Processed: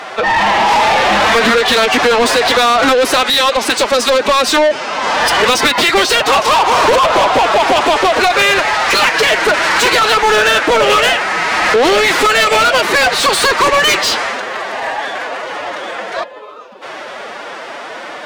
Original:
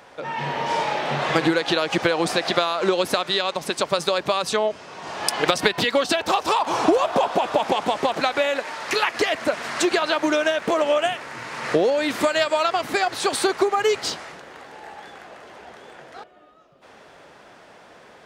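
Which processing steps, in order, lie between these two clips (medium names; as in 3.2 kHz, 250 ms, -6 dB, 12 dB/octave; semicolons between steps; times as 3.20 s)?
formant-preserving pitch shift +6 st; overdrive pedal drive 29 dB, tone 4.1 kHz, clips at -4 dBFS; trim +1 dB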